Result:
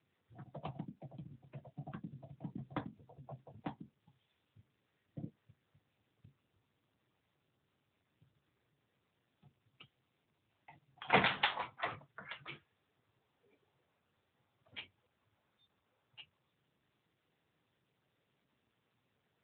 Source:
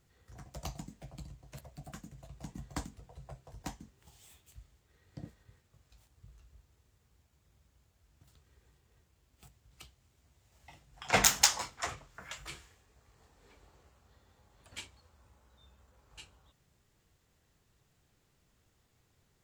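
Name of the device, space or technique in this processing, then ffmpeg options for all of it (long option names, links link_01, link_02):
mobile call with aggressive noise cancelling: -filter_complex "[0:a]asplit=3[link_01][link_02][link_03];[link_01]afade=type=out:start_time=1.74:duration=0.02[link_04];[link_02]lowshelf=frequency=490:gain=2.5,afade=type=in:start_time=1.74:duration=0.02,afade=type=out:start_time=2.3:duration=0.02[link_05];[link_03]afade=type=in:start_time=2.3:duration=0.02[link_06];[link_04][link_05][link_06]amix=inputs=3:normalize=0,highpass=frequency=100:width=0.5412,highpass=frequency=100:width=1.3066,afftdn=noise_reduction=16:noise_floor=-52,volume=1dB" -ar 8000 -c:a libopencore_amrnb -b:a 10200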